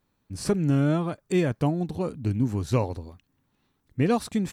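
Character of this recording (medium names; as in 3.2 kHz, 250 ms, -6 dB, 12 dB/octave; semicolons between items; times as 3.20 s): noise floor -74 dBFS; spectral tilt -7.5 dB/octave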